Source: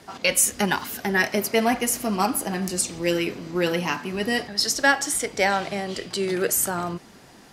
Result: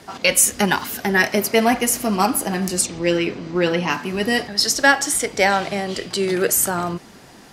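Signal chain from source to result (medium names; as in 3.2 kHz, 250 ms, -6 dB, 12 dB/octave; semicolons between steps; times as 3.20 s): 2.86–3.90 s: distance through air 77 m; trim +4.5 dB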